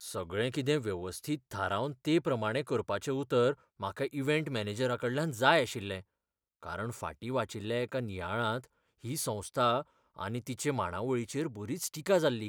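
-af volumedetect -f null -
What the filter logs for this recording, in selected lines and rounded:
mean_volume: -33.0 dB
max_volume: -10.3 dB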